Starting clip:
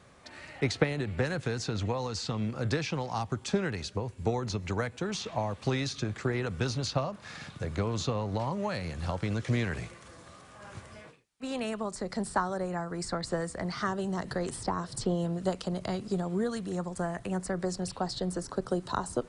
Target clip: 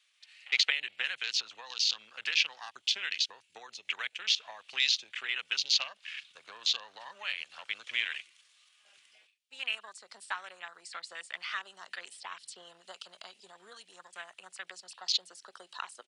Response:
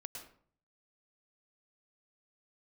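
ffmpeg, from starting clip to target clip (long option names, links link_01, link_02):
-af "afwtdn=0.00891,atempo=1.2,highpass=frequency=2900:width_type=q:width=2.8,volume=7.5dB"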